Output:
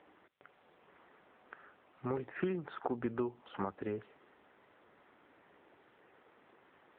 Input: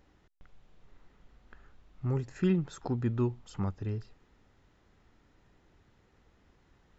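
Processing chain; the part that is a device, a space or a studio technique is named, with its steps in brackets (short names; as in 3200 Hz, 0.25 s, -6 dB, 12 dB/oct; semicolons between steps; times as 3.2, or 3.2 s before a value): voicemail (BPF 390–2700 Hz; compressor 12:1, threshold -39 dBFS, peak gain reduction 9.5 dB; gain +8.5 dB; AMR-NB 7.95 kbps 8000 Hz)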